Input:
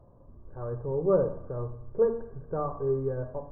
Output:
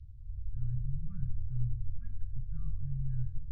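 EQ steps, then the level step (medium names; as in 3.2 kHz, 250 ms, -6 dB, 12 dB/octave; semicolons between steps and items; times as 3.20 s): inverse Chebyshev band-stop 350–890 Hz, stop band 80 dB; distance through air 210 m; +12.5 dB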